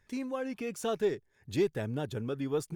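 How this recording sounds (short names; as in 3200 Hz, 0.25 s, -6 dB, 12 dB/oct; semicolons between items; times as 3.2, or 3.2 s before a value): noise floor -71 dBFS; spectral tilt -6.0 dB/oct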